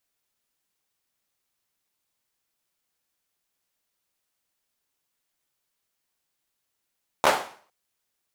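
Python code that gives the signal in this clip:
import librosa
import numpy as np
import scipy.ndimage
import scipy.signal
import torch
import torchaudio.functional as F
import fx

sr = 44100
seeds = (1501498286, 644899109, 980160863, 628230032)

y = fx.drum_clap(sr, seeds[0], length_s=0.46, bursts=3, spacing_ms=13, hz=770.0, decay_s=0.46)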